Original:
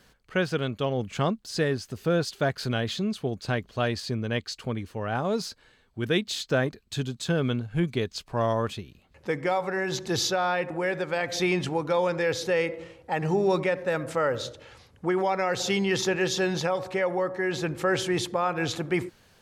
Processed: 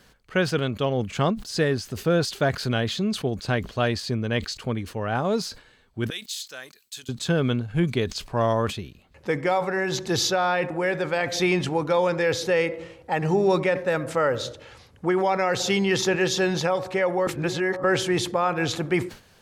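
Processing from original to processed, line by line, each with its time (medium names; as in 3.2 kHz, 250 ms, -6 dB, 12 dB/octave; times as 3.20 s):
6.10–7.09 s: differentiator
17.27–17.84 s: reverse
whole clip: decay stretcher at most 150 dB/s; trim +3 dB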